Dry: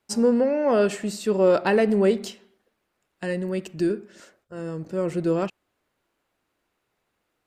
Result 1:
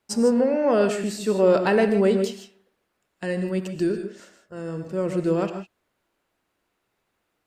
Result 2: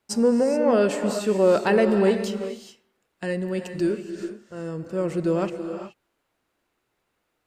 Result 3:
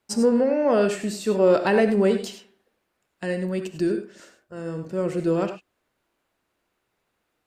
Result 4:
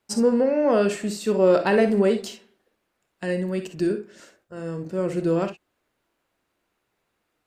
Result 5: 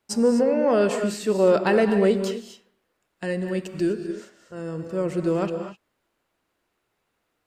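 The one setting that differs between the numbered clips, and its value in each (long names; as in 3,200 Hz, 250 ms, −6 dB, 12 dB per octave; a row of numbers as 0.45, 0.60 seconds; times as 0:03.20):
reverb whose tail is shaped and stops, gate: 180, 450, 120, 80, 280 milliseconds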